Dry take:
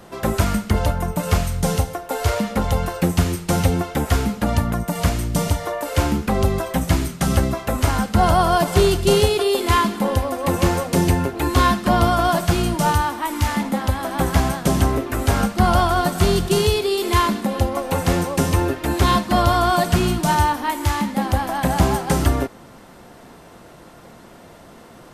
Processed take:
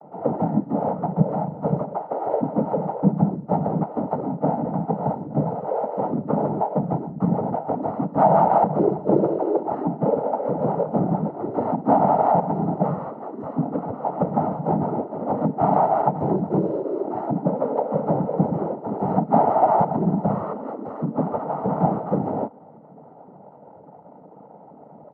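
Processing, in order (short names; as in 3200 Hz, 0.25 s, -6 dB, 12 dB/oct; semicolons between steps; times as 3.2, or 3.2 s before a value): elliptic band-pass 170–700 Hz, stop band 50 dB; comb 1.5 ms, depth 58%; harmoniser +3 st -7 dB; noise vocoder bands 12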